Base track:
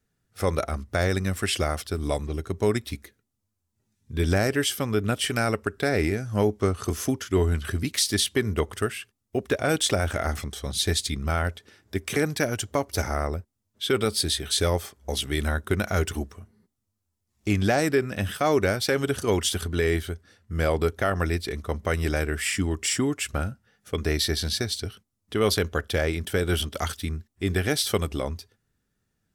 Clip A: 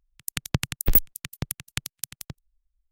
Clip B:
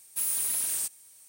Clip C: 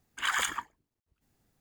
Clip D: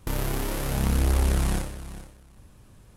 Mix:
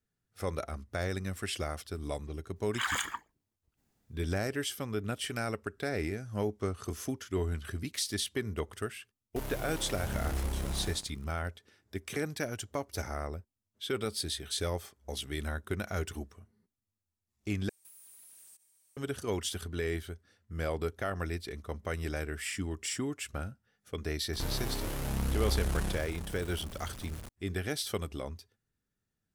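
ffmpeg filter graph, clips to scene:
-filter_complex "[4:a]asplit=2[s0][s1];[0:a]volume=0.316[s2];[s0]acrusher=bits=4:mix=0:aa=0.5[s3];[2:a]acompressor=threshold=0.0126:ratio=6:attack=3.2:release=140:knee=1:detection=peak[s4];[s1]aeval=exprs='val(0)+0.5*0.0282*sgn(val(0))':c=same[s5];[s2]asplit=2[s6][s7];[s6]atrim=end=17.694[s8];[s4]atrim=end=1.28,asetpts=PTS-STARTPTS,volume=0.188[s9];[s7]atrim=start=18.966[s10];[3:a]atrim=end=1.6,asetpts=PTS-STARTPTS,volume=0.708,afade=t=in:d=0.004:c=hsin,afade=t=out:st=1.596:d=0.004:c=hsin,adelay=2560[s11];[s3]atrim=end=2.96,asetpts=PTS-STARTPTS,volume=0.251,afade=t=in:d=0.004:c=hsin,afade=t=out:st=2.956:d=0.004:c=hsin,adelay=9290[s12];[s5]atrim=end=2.96,asetpts=PTS-STARTPTS,volume=0.335,afade=t=in:d=0.004:c=hsin,afade=t=out:st=2.956:d=0.004:c=hsin,adelay=24330[s13];[s8][s9]acrossfade=d=0.004:c1=hsin:c2=hsin[s14];[s14][s10]acrossfade=d=0.004:c1=hsin:c2=hsin[s15];[s15][s11][s12][s13]amix=inputs=4:normalize=0"

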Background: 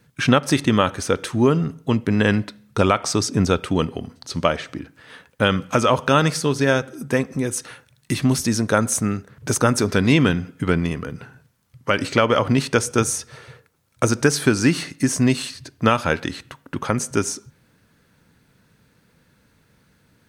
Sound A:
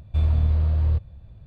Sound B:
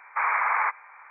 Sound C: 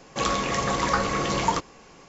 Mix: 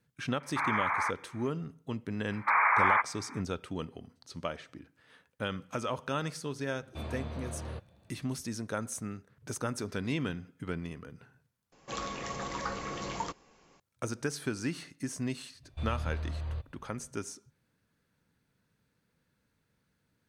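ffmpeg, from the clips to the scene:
-filter_complex "[2:a]asplit=2[s0][s1];[1:a]asplit=2[s2][s3];[0:a]volume=0.141[s4];[s2]highpass=240[s5];[s3]lowshelf=f=450:g=-12[s6];[s4]asplit=2[s7][s8];[s7]atrim=end=11.724[s9];[3:a]atrim=end=2.08,asetpts=PTS-STARTPTS,volume=0.237[s10];[s8]atrim=start=13.796[s11];[s0]atrim=end=1.1,asetpts=PTS-STARTPTS,volume=0.473,afade=t=in:d=0.004:c=hsin,afade=t=out:st=1.096:d=0.004:c=hsin,adelay=400[s12];[s1]atrim=end=1.1,asetpts=PTS-STARTPTS,volume=0.944,afade=t=in:d=0.004:c=hsin,afade=t=out:st=1.096:d=0.004:c=hsin,adelay=2310[s13];[s5]atrim=end=1.46,asetpts=PTS-STARTPTS,volume=0.794,afade=t=in:d=0.004:c=hsin,afade=t=out:st=1.456:d=0.004:c=hsin,adelay=6810[s14];[s6]atrim=end=1.46,asetpts=PTS-STARTPTS,volume=0.631,afade=t=in:d=0.004:c=hsin,afade=t=out:st=1.456:d=0.004:c=hsin,adelay=15630[s15];[s9][s10]acrossfade=d=0.004:c1=hsin:c2=hsin[s16];[s16][s11]acrossfade=d=0.004:c1=hsin:c2=hsin[s17];[s17][s12][s13][s14][s15]amix=inputs=5:normalize=0"

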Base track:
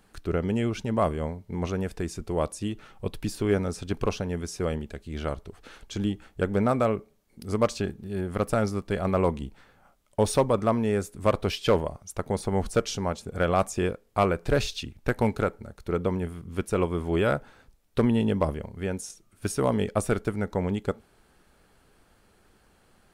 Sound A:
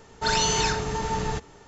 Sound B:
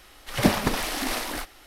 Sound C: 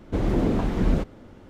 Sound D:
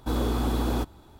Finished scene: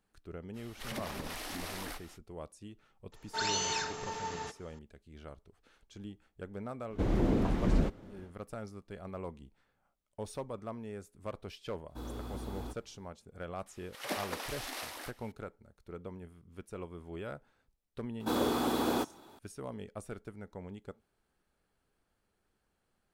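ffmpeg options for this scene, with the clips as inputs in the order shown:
-filter_complex "[2:a]asplit=2[s0][s1];[4:a]asplit=2[s2][s3];[0:a]volume=0.126[s4];[s0]acompressor=threshold=0.0251:ratio=6:attack=3.2:release=140:knee=1:detection=peak[s5];[1:a]highpass=f=510:p=1[s6];[s1]highpass=420[s7];[s3]highpass=260[s8];[s5]atrim=end=1.66,asetpts=PTS-STARTPTS,volume=0.531,afade=t=in:d=0.05,afade=t=out:st=1.61:d=0.05,adelay=530[s9];[s6]atrim=end=1.67,asetpts=PTS-STARTPTS,volume=0.376,afade=t=in:d=0.004:c=hsin,afade=t=out:st=1.666:d=0.004:c=hsin,adelay=3120[s10];[3:a]atrim=end=1.49,asetpts=PTS-STARTPTS,volume=0.501,afade=t=in:d=0.1,afade=t=out:st=1.39:d=0.1,adelay=6860[s11];[s2]atrim=end=1.19,asetpts=PTS-STARTPTS,volume=0.158,afade=t=in:d=0.004:c=hsin,afade=t=out:st=1.186:d=0.004:c=hsin,adelay=11890[s12];[s7]atrim=end=1.66,asetpts=PTS-STARTPTS,volume=0.251,afade=t=in:d=0.004:c=hsin,afade=t=out:st=1.656:d=0.004:c=hsin,adelay=13660[s13];[s8]atrim=end=1.19,asetpts=PTS-STARTPTS,afade=t=in:d=0.004:c=hsin,afade=t=out:st=1.186:d=0.004:c=hsin,adelay=18200[s14];[s4][s9][s10][s11][s12][s13][s14]amix=inputs=7:normalize=0"

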